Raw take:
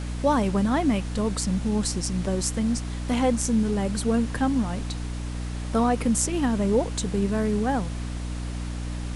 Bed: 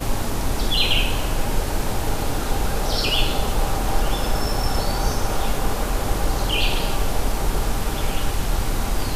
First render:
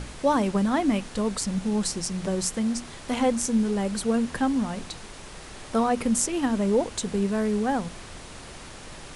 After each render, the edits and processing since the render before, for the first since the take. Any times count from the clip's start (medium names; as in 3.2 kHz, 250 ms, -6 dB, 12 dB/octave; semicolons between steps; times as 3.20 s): hum notches 60/120/180/240/300 Hz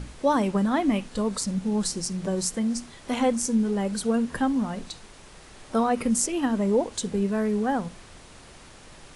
noise print and reduce 6 dB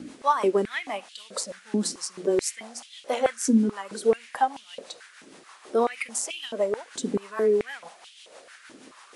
rotary cabinet horn 6.3 Hz; step-sequenced high-pass 4.6 Hz 270–3100 Hz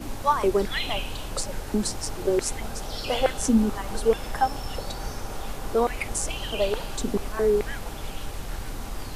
add bed -11.5 dB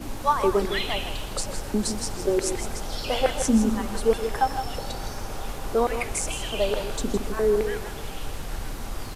delay 161 ms -9 dB; modulated delay 127 ms, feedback 54%, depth 206 cents, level -15.5 dB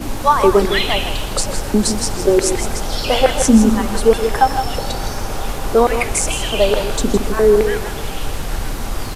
trim +10 dB; peak limiter -1 dBFS, peak gain reduction 2 dB